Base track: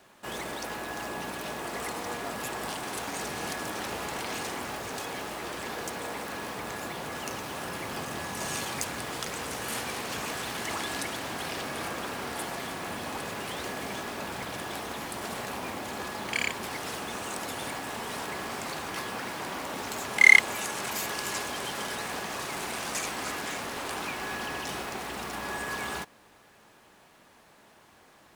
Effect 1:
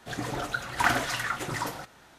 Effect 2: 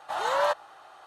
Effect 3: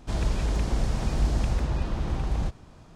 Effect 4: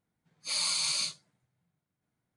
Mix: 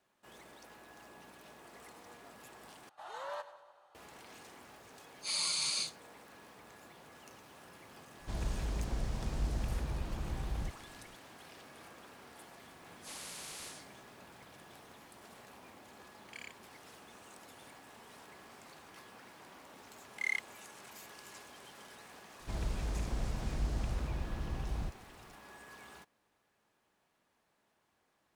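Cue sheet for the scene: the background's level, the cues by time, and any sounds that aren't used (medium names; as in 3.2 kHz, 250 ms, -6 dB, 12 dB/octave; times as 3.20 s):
base track -19.5 dB
2.89 s: replace with 2 -17.5 dB + two-band feedback delay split 1.4 kHz, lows 153 ms, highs 96 ms, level -14 dB
4.78 s: add 4 -4 dB
8.20 s: add 3 -10.5 dB
12.60 s: add 4 -17.5 dB + spectrum-flattening compressor 10:1
22.40 s: add 3 -10.5 dB
not used: 1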